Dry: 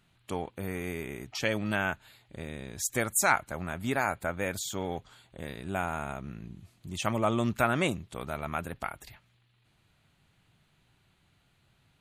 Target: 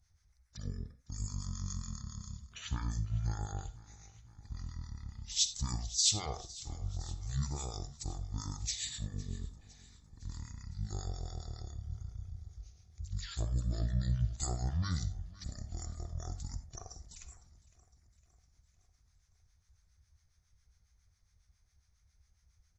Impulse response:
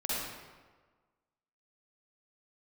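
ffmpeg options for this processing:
-filter_complex "[0:a]firequalizer=gain_entry='entry(120,0);entry(580,-22);entry(12000,5)':delay=0.05:min_phase=1,asetrate=23241,aresample=44100,acrossover=split=930[link_01][link_02];[link_01]aeval=exprs='val(0)*(1-0.7/2+0.7/2*cos(2*PI*7.3*n/s))':channel_layout=same[link_03];[link_02]aeval=exprs='val(0)*(1-0.7/2-0.7/2*cos(2*PI*7.3*n/s))':channel_layout=same[link_04];[link_03][link_04]amix=inputs=2:normalize=0,aecho=1:1:508|1016|1524|2032|2540:0.1|0.059|0.0348|0.0205|0.0121,asplit=2[link_05][link_06];[1:a]atrim=start_sample=2205,atrim=end_sample=4410[link_07];[link_06][link_07]afir=irnorm=-1:irlink=0,volume=-13dB[link_08];[link_05][link_08]amix=inputs=2:normalize=0,volume=3dB"

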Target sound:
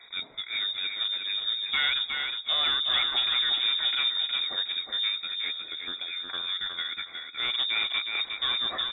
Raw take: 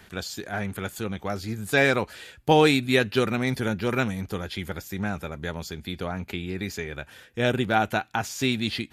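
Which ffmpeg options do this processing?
ffmpeg -i in.wav -filter_complex "[0:a]asplit=3[link_01][link_02][link_03];[link_01]afade=type=out:start_time=5.28:duration=0.02[link_04];[link_02]highpass=200,afade=type=in:start_time=5.28:duration=0.02,afade=type=out:start_time=7.55:duration=0.02[link_05];[link_03]afade=type=in:start_time=7.55:duration=0.02[link_06];[link_04][link_05][link_06]amix=inputs=3:normalize=0,afftfilt=real='re*(1-between(b*sr/4096,440,1300))':imag='im*(1-between(b*sr/4096,440,1300))':win_size=4096:overlap=0.75,lowshelf=frequency=300:gain=3.5,bandreject=frequency=264.2:width_type=h:width=4,bandreject=frequency=528.4:width_type=h:width=4,asoftclip=type=tanh:threshold=-22.5dB,aecho=1:1:364|728|1092:0.562|0.141|0.0351,lowpass=frequency=3200:width_type=q:width=0.5098,lowpass=frequency=3200:width_type=q:width=0.6013,lowpass=frequency=3200:width_type=q:width=0.9,lowpass=frequency=3200:width_type=q:width=2.563,afreqshift=-3800" out.wav

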